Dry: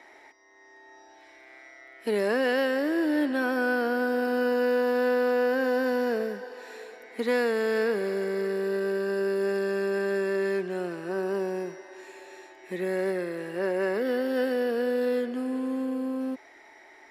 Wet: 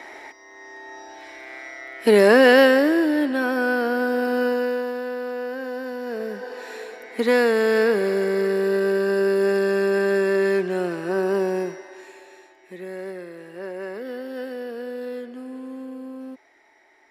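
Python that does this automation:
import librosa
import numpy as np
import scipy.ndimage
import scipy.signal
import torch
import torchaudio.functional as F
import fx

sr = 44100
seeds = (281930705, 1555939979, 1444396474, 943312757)

y = fx.gain(x, sr, db=fx.line((2.64, 12.0), (3.15, 4.0), (4.45, 4.0), (5.04, -5.0), (6.01, -5.0), (6.51, 7.0), (11.62, 7.0), (12.74, -5.5)))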